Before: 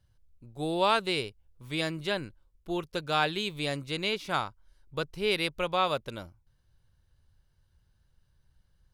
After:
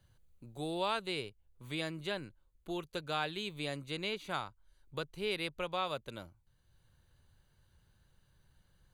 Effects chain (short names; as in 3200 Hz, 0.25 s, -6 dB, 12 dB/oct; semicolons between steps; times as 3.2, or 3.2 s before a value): Butterworth band-stop 5300 Hz, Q 5.7; three-band squash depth 40%; gain -7.5 dB